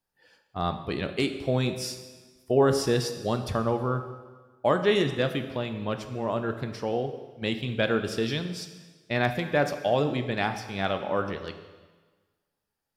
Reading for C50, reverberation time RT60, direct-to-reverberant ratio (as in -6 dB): 9.5 dB, 1.4 s, 7.5 dB